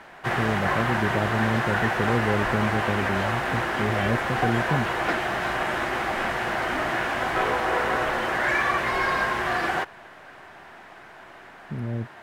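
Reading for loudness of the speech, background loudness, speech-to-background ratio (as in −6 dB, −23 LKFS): −28.5 LKFS, −25.0 LKFS, −3.5 dB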